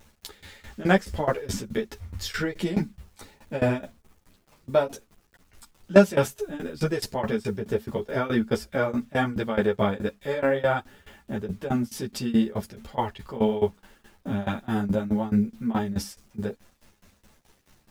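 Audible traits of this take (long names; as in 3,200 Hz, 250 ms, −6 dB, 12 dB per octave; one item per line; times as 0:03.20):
a quantiser's noise floor 10 bits, dither none
tremolo saw down 4.7 Hz, depth 95%
a shimmering, thickened sound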